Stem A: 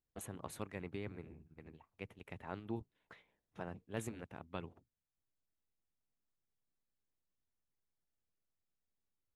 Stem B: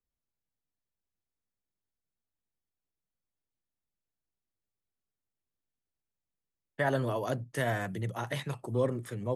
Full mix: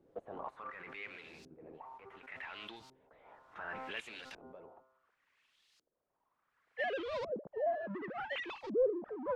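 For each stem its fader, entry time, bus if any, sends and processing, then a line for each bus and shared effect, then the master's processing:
−3.0 dB, 0.00 s, no send, first difference; hum removal 130.6 Hz, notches 11; background raised ahead of every attack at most 21 dB per second
−12.5 dB, 0.00 s, no send, three sine waves on the formant tracks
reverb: not used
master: low-shelf EQ 250 Hz −6.5 dB; power curve on the samples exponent 0.5; auto-filter low-pass saw up 0.69 Hz 380–4,900 Hz

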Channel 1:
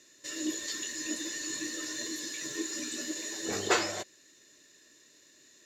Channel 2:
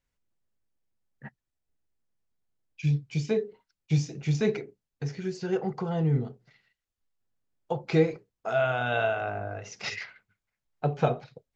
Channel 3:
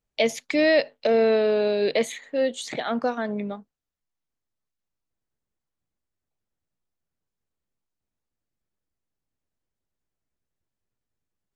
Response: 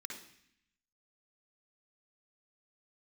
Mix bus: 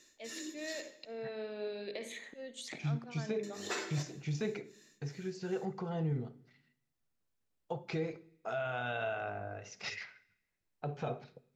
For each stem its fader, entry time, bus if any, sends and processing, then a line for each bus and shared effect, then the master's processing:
−5.5 dB, 0.00 s, muted 0:00.81–0:03.43, bus A, send −4.5 dB, tremolo along a rectified sine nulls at 2.7 Hz
−8.0 dB, 0.00 s, no bus, send −11 dB, brickwall limiter −19.5 dBFS, peak gain reduction 8 dB
−3.0 dB, 0.00 s, bus A, send −9 dB, volume swells 669 ms; downward compressor, threshold −28 dBFS, peak gain reduction 10 dB
bus A: 0.0 dB, downward compressor 4 to 1, threshold −44 dBFS, peak gain reduction 14.5 dB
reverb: on, RT60 0.65 s, pre-delay 51 ms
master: no processing

